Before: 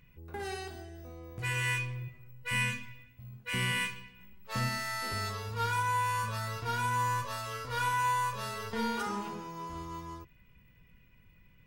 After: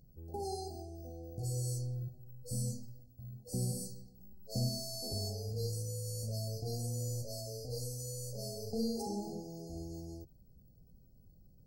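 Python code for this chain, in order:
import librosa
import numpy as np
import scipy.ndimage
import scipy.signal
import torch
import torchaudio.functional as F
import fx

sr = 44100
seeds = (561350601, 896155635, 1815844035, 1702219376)

y = fx.brickwall_bandstop(x, sr, low_hz=840.0, high_hz=4100.0)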